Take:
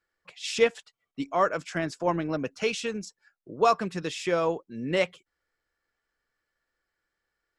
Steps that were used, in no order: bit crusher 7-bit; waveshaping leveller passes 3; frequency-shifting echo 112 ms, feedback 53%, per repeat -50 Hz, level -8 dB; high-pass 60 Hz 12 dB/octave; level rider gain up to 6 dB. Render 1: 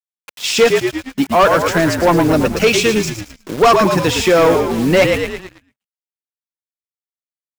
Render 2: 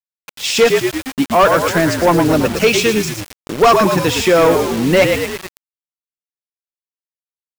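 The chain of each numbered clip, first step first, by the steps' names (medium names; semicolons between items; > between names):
level rider > bit crusher > high-pass > frequency-shifting echo > waveshaping leveller; frequency-shifting echo > high-pass > bit crusher > waveshaping leveller > level rider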